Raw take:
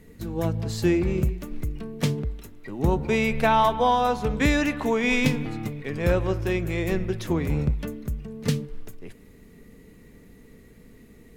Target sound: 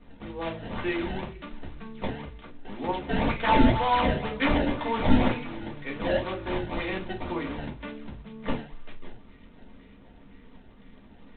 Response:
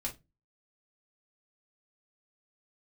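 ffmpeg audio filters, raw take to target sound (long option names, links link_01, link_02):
-filter_complex "[0:a]lowshelf=frequency=430:gain=-10,acrossover=split=260|1100|2000[link_01][link_02][link_03][link_04];[link_01]acompressor=threshold=-46dB:ratio=12[link_05];[link_02]volume=25.5dB,asoftclip=hard,volume=-25.5dB[link_06];[link_05][link_06][link_03][link_04]amix=inputs=4:normalize=0,acrusher=samples=22:mix=1:aa=0.000001:lfo=1:lforange=35.2:lforate=2[link_07];[1:a]atrim=start_sample=2205,afade=type=out:start_time=0.43:duration=0.01,atrim=end_sample=19404[link_08];[link_07][link_08]afir=irnorm=-1:irlink=0,volume=1.5dB" -ar 8000 -c:a adpcm_g726 -b:a 24k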